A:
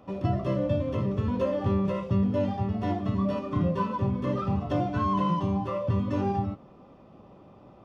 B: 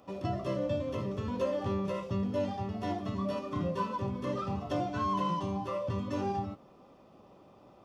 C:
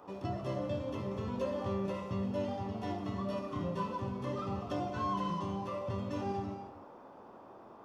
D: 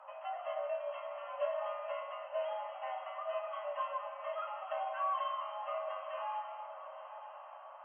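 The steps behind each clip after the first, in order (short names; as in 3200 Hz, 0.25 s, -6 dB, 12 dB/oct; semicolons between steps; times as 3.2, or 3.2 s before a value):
tone controls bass -6 dB, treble +9 dB; gain -3.5 dB
band noise 230–1100 Hz -51 dBFS; non-linear reverb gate 0.34 s flat, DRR 7 dB; gain -4 dB
FFT band-pass 480–3200 Hz; frequency shift +54 Hz; diffused feedback echo 1.011 s, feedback 42%, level -11.5 dB; gain +1 dB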